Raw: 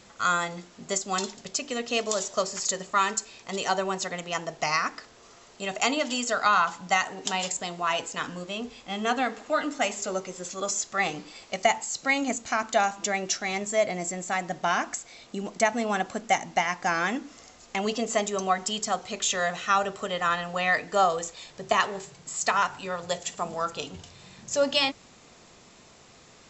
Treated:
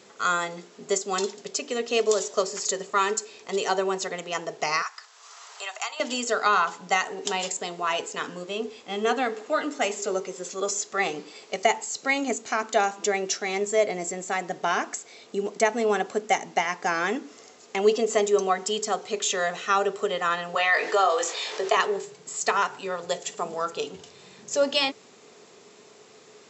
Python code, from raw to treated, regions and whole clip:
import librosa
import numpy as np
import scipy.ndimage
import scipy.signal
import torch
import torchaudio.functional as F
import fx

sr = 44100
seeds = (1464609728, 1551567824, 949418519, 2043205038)

y = fx.chain(x, sr, fx.highpass(hz=920.0, slope=24),
    fx.peak_eq(hz=2200.0, db=-4.5, octaves=1.4),
    fx.band_squash(depth_pct=70), at=(4.82, 6.0))
y = fx.chain(y, sr, fx.bandpass_edges(low_hz=580.0, high_hz=5800.0),
    fx.doubler(ms=21.0, db=-6.5),
    fx.env_flatten(amount_pct=50), at=(20.55, 21.77))
y = scipy.signal.sosfilt(scipy.signal.butter(2, 190.0, 'highpass', fs=sr, output='sos'), y)
y = fx.peak_eq(y, sr, hz=420.0, db=14.0, octaves=0.24)